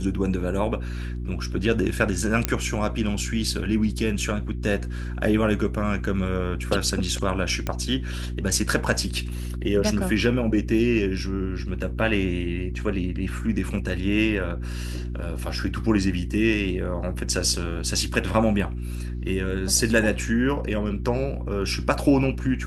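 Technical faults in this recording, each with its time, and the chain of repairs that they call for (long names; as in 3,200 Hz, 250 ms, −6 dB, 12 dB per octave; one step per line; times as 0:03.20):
mains hum 60 Hz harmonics 6 −30 dBFS
0:02.45: click −5 dBFS
0:07.67: click −12 dBFS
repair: click removal
hum removal 60 Hz, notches 6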